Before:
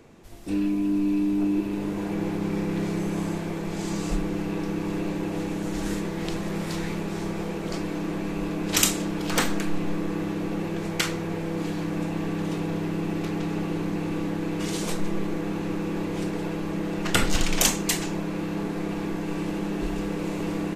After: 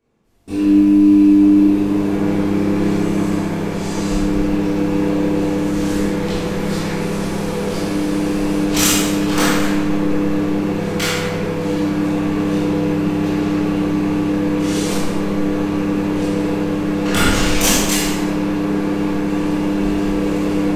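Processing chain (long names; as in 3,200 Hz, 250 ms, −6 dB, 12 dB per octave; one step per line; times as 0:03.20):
0:06.97–0:08.62: linear delta modulator 64 kbit/s, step −34.5 dBFS
noise gate with hold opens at −27 dBFS
in parallel at −10 dB: wave folding −16.5 dBFS
on the sum: convolution reverb RT60 1.5 s, pre-delay 16 ms, DRR −10.5 dB
level −4 dB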